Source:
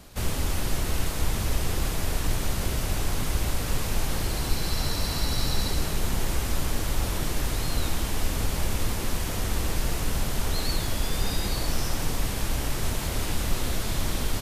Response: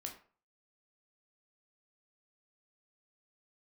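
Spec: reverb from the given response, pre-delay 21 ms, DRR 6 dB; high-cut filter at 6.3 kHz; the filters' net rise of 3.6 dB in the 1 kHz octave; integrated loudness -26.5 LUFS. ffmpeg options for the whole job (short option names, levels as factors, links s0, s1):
-filter_complex "[0:a]lowpass=6300,equalizer=f=1000:t=o:g=4.5,asplit=2[s0][s1];[1:a]atrim=start_sample=2205,adelay=21[s2];[s1][s2]afir=irnorm=-1:irlink=0,volume=0.708[s3];[s0][s3]amix=inputs=2:normalize=0,volume=1.26"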